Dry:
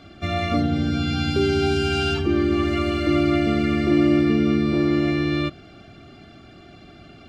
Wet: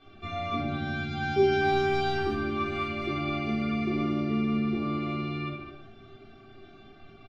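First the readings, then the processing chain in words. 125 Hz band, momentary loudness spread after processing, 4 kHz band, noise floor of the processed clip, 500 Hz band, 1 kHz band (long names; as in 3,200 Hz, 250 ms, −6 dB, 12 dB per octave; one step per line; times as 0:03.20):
−9.0 dB, 9 LU, −9.5 dB, −52 dBFS, −6.0 dB, −1.0 dB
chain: low-pass filter 4,400 Hz 12 dB per octave
mains-hum notches 50/100/150/200/250/300/350 Hz
tuned comb filter 390 Hz, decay 0.47 s, mix 90%
far-end echo of a speakerphone 210 ms, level −9 dB
rectangular room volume 280 cubic metres, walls furnished, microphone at 3.6 metres
level +2 dB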